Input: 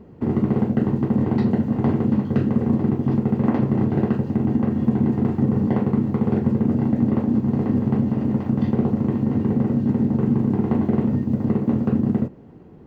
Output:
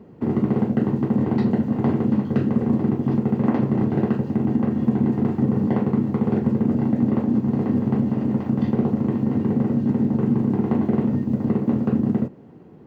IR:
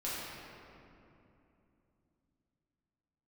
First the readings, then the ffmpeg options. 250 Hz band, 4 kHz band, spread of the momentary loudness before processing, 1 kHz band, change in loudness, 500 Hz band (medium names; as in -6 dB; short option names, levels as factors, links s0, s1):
-0.5 dB, no reading, 2 LU, 0.0 dB, -0.5 dB, 0.0 dB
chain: -af "highpass=110"